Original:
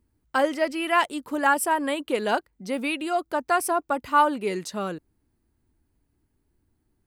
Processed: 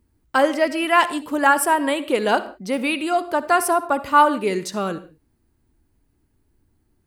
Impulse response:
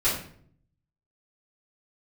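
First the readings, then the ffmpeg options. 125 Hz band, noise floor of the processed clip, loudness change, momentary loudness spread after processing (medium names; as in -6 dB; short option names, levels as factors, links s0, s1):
+5.0 dB, -67 dBFS, +5.0 dB, 9 LU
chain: -filter_complex "[0:a]asplit=2[s0][s1];[1:a]atrim=start_sample=2205,atrim=end_sample=6615,adelay=52[s2];[s1][s2]afir=irnorm=-1:irlink=0,volume=0.0501[s3];[s0][s3]amix=inputs=2:normalize=0,volume=1.78"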